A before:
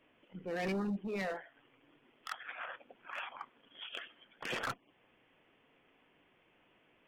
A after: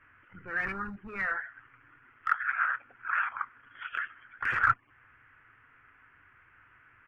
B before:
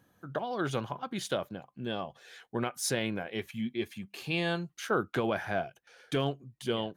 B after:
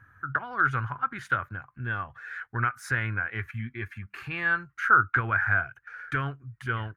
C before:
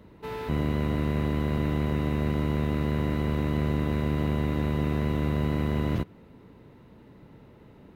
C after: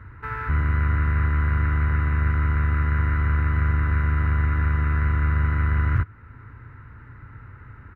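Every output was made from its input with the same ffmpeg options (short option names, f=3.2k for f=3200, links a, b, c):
-filter_complex "[0:a]equalizer=f=110:w=0.51:g=5,asplit=2[a][b];[b]acompressor=threshold=-39dB:ratio=6,volume=-2dB[c];[a][c]amix=inputs=2:normalize=0,firequalizer=gain_entry='entry(110,0);entry(170,-20);entry(250,-15);entry(600,-19);entry(1400,10);entry(3300,-20)':delay=0.05:min_phase=1,volume=5.5dB"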